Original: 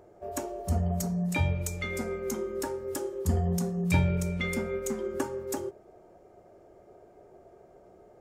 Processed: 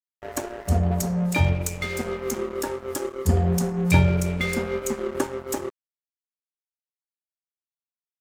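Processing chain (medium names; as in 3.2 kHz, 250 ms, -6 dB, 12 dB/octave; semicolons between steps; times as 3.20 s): de-hum 54.84 Hz, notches 5; crossover distortion -40 dBFS; trim +8 dB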